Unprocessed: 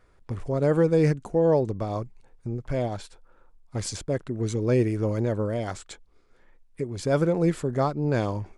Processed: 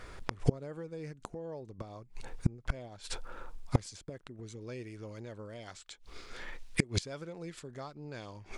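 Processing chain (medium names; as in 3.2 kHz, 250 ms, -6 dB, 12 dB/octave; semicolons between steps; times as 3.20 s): peaking EQ 4 kHz +6 dB 2.8 oct, from 4.61 s +13 dB; compression 2:1, threshold -24 dBFS, peak gain reduction 5.5 dB; inverted gate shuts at -24 dBFS, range -30 dB; trim +12 dB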